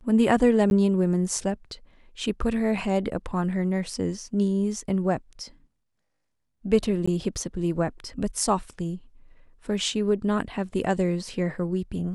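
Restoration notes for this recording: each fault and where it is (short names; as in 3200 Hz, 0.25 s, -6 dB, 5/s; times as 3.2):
0.7–0.71 gap 11 ms
7.06–7.08 gap 15 ms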